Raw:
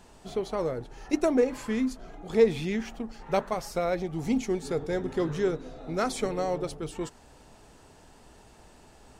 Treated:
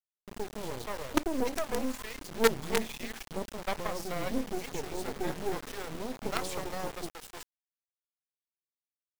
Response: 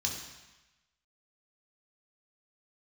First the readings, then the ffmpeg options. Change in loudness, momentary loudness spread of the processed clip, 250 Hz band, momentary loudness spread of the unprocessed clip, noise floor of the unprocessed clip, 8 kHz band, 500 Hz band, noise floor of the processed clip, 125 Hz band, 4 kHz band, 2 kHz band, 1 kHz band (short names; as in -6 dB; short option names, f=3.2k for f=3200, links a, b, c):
-5.5 dB, 12 LU, -7.0 dB, 12 LU, -55 dBFS, +2.0 dB, -7.0 dB, under -85 dBFS, -7.0 dB, +2.5 dB, +1.0 dB, -2.0 dB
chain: -filter_complex "[0:a]acrossover=split=170|510[a][b][c];[b]adelay=30[d];[c]adelay=340[e];[a][d][e]amix=inputs=3:normalize=0,acrusher=bits=4:dc=4:mix=0:aa=0.000001"